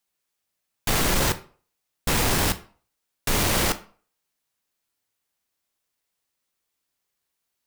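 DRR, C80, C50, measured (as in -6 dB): 10.5 dB, 21.0 dB, 17.0 dB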